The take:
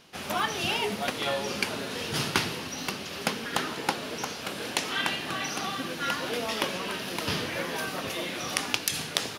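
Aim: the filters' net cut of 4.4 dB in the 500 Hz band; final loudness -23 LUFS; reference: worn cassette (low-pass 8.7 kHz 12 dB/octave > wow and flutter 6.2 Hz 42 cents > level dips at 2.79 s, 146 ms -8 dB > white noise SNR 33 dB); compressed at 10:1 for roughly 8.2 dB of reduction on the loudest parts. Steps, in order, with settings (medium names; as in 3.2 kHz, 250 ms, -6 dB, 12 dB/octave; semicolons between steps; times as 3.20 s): peaking EQ 500 Hz -5.5 dB; compression 10:1, threshold -32 dBFS; low-pass 8.7 kHz 12 dB/octave; wow and flutter 6.2 Hz 42 cents; level dips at 2.79 s, 146 ms -8 dB; white noise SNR 33 dB; trim +12.5 dB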